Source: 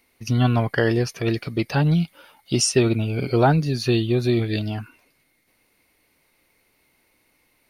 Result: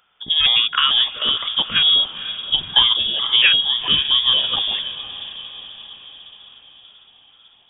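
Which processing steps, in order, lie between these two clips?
pitch shifter gated in a rhythm +4 semitones, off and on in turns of 228 ms
dynamic equaliser 2,300 Hz, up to +4 dB, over −41 dBFS, Q 2.6
feedback delay with all-pass diffusion 506 ms, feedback 56%, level −13 dB
voice inversion scrambler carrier 3,500 Hz
level +3 dB

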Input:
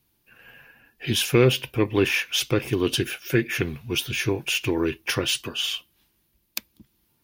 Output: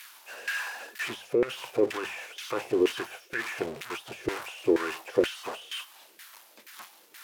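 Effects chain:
spike at every zero crossing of −10 dBFS
mains-hum notches 50/100/150/200 Hz
compressor whose output falls as the input rises −20 dBFS, ratio −1
dynamic equaliser 580 Hz, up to +5 dB, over −35 dBFS, Q 0.84
auto-filter band-pass saw down 2.1 Hz 370–1,800 Hz

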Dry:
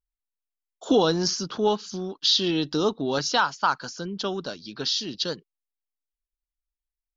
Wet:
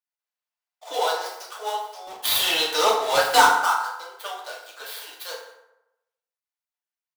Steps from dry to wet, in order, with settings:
gap after every zero crossing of 0.094 ms
Butterworth high-pass 570 Hz 36 dB per octave
0:02.07–0:03.48: leveller curve on the samples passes 3
on a send: single-tap delay 187 ms −23 dB
on the sum: feedback delay network reverb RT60 0.9 s, low-frequency decay 0.8×, high-frequency decay 0.55×, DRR −5 dB
level −4 dB

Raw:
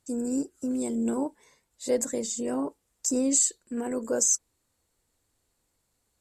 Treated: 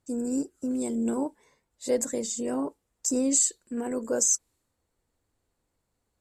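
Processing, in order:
one half of a high-frequency compander decoder only

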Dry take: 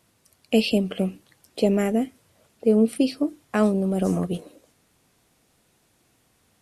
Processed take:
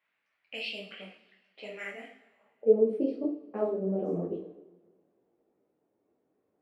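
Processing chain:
low-pass that shuts in the quiet parts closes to 2,500 Hz, open at −15.5 dBFS
flanger 1.2 Hz, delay 6.5 ms, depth 6.6 ms, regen −59%
band-pass filter sweep 2,100 Hz → 410 Hz, 0:02.15–0:02.74
coupled-rooms reverb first 0.47 s, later 1.9 s, from −19 dB, DRR 1.5 dB
micro pitch shift up and down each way 32 cents
level +4.5 dB

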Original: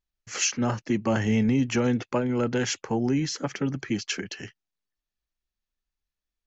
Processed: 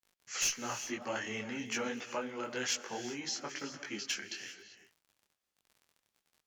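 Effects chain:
high-pass filter 1,300 Hz 6 dB per octave
surface crackle 28 per second −45 dBFS
asymmetric clip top −23 dBFS
reverb whose tail is shaped and stops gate 420 ms rising, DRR 11 dB
micro pitch shift up and down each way 37 cents

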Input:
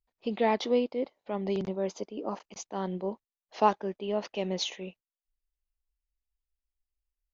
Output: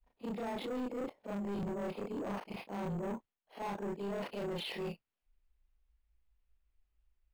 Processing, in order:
every overlapping window played backwards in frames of 80 ms
reversed playback
downward compressor 5 to 1, threshold −41 dBFS, peak gain reduction 18 dB
reversed playback
downsampling to 11,025 Hz
in parallel at +2 dB: brickwall limiter −36.5 dBFS, peak gain reduction 7.5 dB
on the sum: bad sample-rate conversion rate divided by 6×, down none, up hold
bass and treble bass +4 dB, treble −13 dB
soft clipping −38.5 dBFS, distortion −9 dB
level +4 dB

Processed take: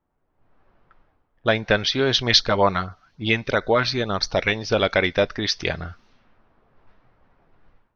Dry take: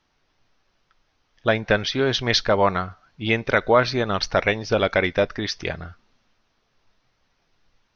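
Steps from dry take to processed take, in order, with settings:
automatic gain control gain up to 15 dB
0:02.22–0:04.50: auto-filter notch sine 5.9 Hz → 1.1 Hz 400–3,000 Hz
dynamic equaliser 4,100 Hz, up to +5 dB, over −34 dBFS, Q 1.2
low-pass that shuts in the quiet parts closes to 910 Hz, open at −29.5 dBFS
level −4.5 dB

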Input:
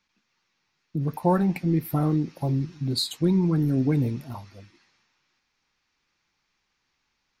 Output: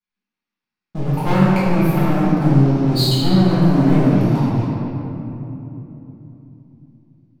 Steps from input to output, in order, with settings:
high-shelf EQ 9,500 Hz −9.5 dB
leveller curve on the samples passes 5
rectangular room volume 170 cubic metres, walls hard, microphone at 1.4 metres
level −13.5 dB

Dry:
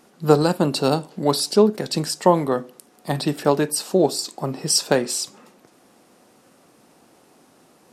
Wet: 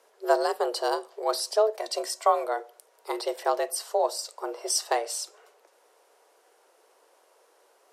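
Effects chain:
0:01.79–0:02.46: comb filter 2.4 ms, depth 56%
frequency shifter +220 Hz
level −7.5 dB

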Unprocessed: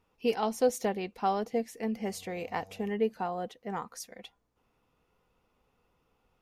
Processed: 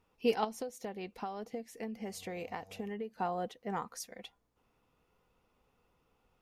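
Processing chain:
0:00.44–0:03.18: downward compressor 10 to 1, threshold −36 dBFS, peak gain reduction 16.5 dB
level −1 dB

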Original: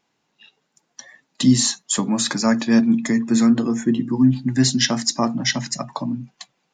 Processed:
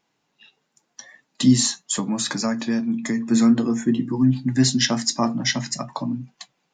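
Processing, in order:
flanger 0.47 Hz, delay 6 ms, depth 3.9 ms, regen −68%
0:01.66–0:03.26: downward compressor 6 to 1, threshold −23 dBFS, peak gain reduction 8.5 dB
level +3 dB

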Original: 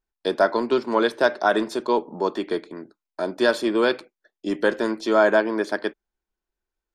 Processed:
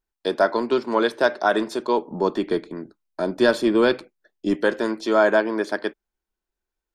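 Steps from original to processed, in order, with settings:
0:02.11–0:04.55: low-shelf EQ 200 Hz +12 dB

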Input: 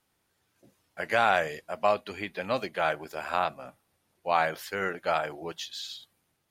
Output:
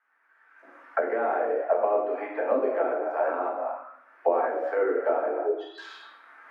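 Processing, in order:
0:05.38–0:05.78: expanding power law on the bin magnitudes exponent 3.2
camcorder AGC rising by 22 dB per second
parametric band 390 Hz −4.5 dB 0.44 octaves
in parallel at +1.5 dB: brickwall limiter −17.5 dBFS, peak gain reduction 11 dB
on the sum: Butterworth high-pass 250 Hz 72 dB per octave
high shelf with overshoot 2,500 Hz −12.5 dB, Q 1.5
rectangular room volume 270 cubic metres, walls mixed, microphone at 1.6 metres
envelope filter 380–1,600 Hz, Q 2.4, down, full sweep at −14 dBFS

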